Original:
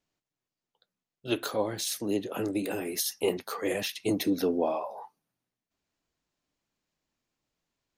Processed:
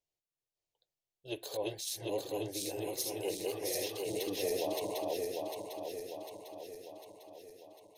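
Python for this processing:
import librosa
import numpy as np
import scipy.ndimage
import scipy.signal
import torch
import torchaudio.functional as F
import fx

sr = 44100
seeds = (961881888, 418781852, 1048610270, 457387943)

y = fx.reverse_delay_fb(x, sr, ms=375, feedback_pct=73, wet_db=-0.5)
y = fx.fixed_phaser(y, sr, hz=560.0, stages=4)
y = fx.band_squash(y, sr, depth_pct=40, at=(4.16, 5.0))
y = y * 10.0 ** (-7.5 / 20.0)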